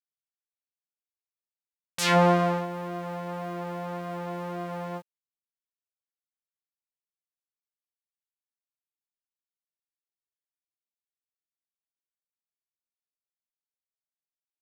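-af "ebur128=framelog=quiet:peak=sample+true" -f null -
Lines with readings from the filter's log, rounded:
Integrated loudness:
  I:         -28.0 LUFS
  Threshold: -38.4 LUFS
Loudness range:
  LRA:        15.0 LU
  Threshold: -51.0 LUFS
  LRA low:   -42.8 LUFS
  LRA high:  -27.8 LUFS
Sample peak:
  Peak:       -8.4 dBFS
True peak:
  Peak:       -8.4 dBFS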